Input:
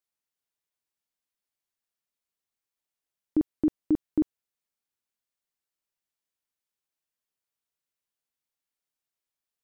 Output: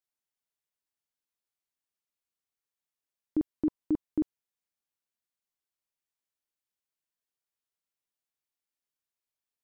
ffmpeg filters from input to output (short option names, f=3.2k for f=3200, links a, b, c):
-filter_complex "[0:a]asettb=1/sr,asplit=3[a][b][c];[a]atrim=end=3.554[d];[b]atrim=start=3.55:end=4.06,asetpts=PTS-STARTPTS,afade=t=in:d=0.004:c=qsin,afade=t=out:st=0.506:d=0.004:c=qsin,equalizer=f=1k:t=o:w=0.27:g=5[e];[c]atrim=start=4.056[f];[d][e]acrossfade=d=0.004:c1=hsin:c2=qsin[g];[g][f]acrossfade=d=0.004:c1=qsin:c2=hsin,volume=-4dB"